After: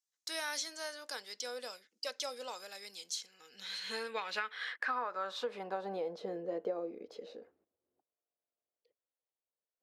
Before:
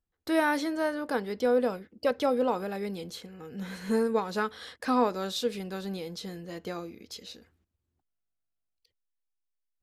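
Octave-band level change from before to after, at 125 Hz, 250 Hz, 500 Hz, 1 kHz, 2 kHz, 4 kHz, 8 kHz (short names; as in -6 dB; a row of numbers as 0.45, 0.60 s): -17.5, -18.5, -11.5, -9.0, -5.0, -1.0, +2.0 dB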